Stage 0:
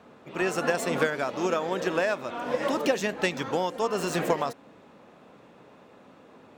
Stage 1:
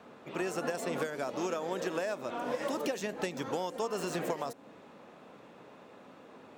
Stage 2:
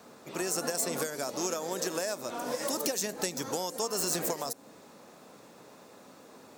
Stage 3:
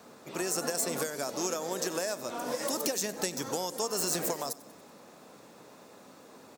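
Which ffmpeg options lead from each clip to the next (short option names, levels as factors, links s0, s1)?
-filter_complex "[0:a]lowshelf=f=110:g=-8,acrossover=split=810|5900[s0][s1][s2];[s0]acompressor=threshold=0.0224:ratio=4[s3];[s1]acompressor=threshold=0.00794:ratio=4[s4];[s2]acompressor=threshold=0.00447:ratio=4[s5];[s3][s4][s5]amix=inputs=3:normalize=0"
-af "aexciter=amount=5.8:drive=3.3:freq=4300"
-af "aecho=1:1:94|188|282|376|470:0.1|0.059|0.0348|0.0205|0.0121"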